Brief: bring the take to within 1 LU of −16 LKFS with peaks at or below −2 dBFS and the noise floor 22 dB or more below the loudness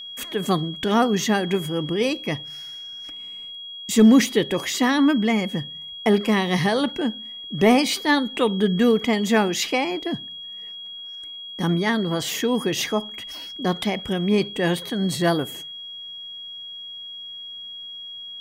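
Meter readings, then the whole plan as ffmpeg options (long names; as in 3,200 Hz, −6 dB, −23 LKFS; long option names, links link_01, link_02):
interfering tone 3,300 Hz; level of the tone −34 dBFS; integrated loudness −21.5 LKFS; sample peak −5.5 dBFS; target loudness −16.0 LKFS
→ -af "bandreject=frequency=3300:width=30"
-af "volume=5.5dB,alimiter=limit=-2dB:level=0:latency=1"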